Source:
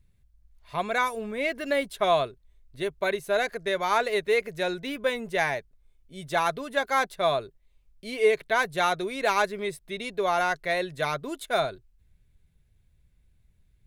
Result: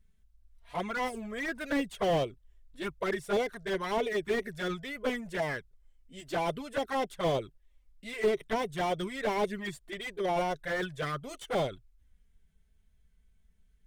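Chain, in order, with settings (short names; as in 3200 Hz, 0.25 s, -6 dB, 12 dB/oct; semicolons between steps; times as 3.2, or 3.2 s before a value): envelope flanger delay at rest 4.7 ms, full sweep at -21 dBFS; formant shift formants -2 st; slew limiter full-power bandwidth 41 Hz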